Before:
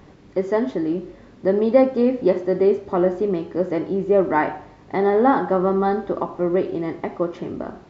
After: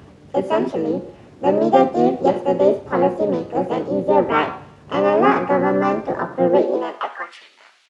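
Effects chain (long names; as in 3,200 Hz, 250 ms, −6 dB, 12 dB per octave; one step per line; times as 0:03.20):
high-pass filter sweep 85 Hz → 2,500 Hz, 0:06.10–0:07.51
pitch-shifted copies added −7 semitones −12 dB, +5 semitones −7 dB, +7 semitones 0 dB
level −2.5 dB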